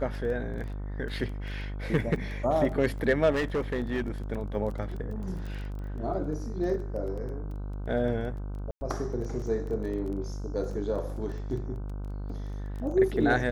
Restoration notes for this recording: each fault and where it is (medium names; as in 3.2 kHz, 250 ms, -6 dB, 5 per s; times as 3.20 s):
buzz 50 Hz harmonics 31 -35 dBFS
crackle 17 per s -37 dBFS
3.32–4.02 s: clipped -24 dBFS
8.71–8.81 s: dropout 100 ms